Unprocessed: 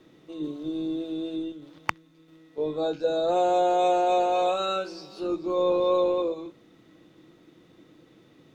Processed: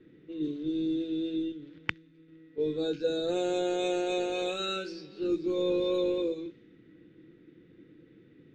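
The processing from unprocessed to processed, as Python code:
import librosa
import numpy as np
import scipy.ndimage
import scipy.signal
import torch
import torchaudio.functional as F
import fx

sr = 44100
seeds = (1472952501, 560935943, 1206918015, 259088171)

y = fx.env_lowpass(x, sr, base_hz=1800.0, full_db=-22.0)
y = fx.band_shelf(y, sr, hz=850.0, db=-16.0, octaves=1.3)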